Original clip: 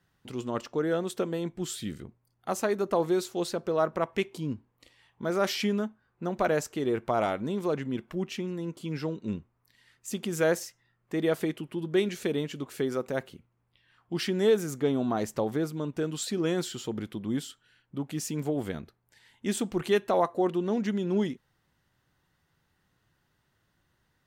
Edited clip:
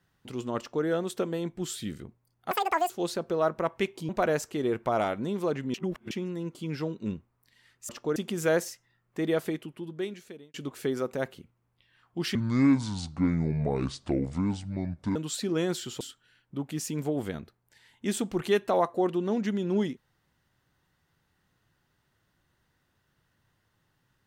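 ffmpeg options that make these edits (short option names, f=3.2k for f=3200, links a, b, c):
-filter_complex "[0:a]asplit=12[a][b][c][d][e][f][g][h][i][j][k][l];[a]atrim=end=2.514[m];[b]atrim=start=2.51:end=3.27,asetpts=PTS-STARTPTS,asetrate=85995,aresample=44100[n];[c]atrim=start=3.266:end=4.462[o];[d]atrim=start=6.308:end=7.962[p];[e]atrim=start=7.958:end=8.332,asetpts=PTS-STARTPTS,areverse[q];[f]atrim=start=8.328:end=10.112[r];[g]atrim=start=0.578:end=0.852[s];[h]atrim=start=10.108:end=12.49,asetpts=PTS-STARTPTS,afade=t=out:st=1.092:d=1.29[t];[i]atrim=start=12.49:end=14.304,asetpts=PTS-STARTPTS,afade=t=in:d=0.004:c=hsin[u];[j]atrim=start=14.3:end=16.04,asetpts=PTS-STARTPTS,asetrate=27342,aresample=44100[v];[k]atrim=start=16.036:end=16.892[w];[l]atrim=start=17.408[x];[m][n]acrossfade=d=0.004:c1=hsin:c2=hsin[y];[y][o]acrossfade=d=0.004:c1=hsin:c2=hsin[z];[z][p]acrossfade=d=0.004:c1=hsin:c2=hsin[aa];[aa][q]acrossfade=d=0.004:c1=hsin:c2=hsin[ab];[ab][r]acrossfade=d=0.004:c1=hsin:c2=hsin[ac];[ac][s]acrossfade=d=0.004:c1=hsin:c2=hsin[ad];[t][u]concat=n=2:v=0:a=1[ae];[ad][ae]acrossfade=d=0.004:c1=hsin:c2=hsin[af];[af][v]acrossfade=d=0.004:c1=hsin:c2=hsin[ag];[ag][w]acrossfade=d=0.004:c1=hsin:c2=hsin[ah];[ah][x]acrossfade=d=0.004:c1=hsin:c2=hsin"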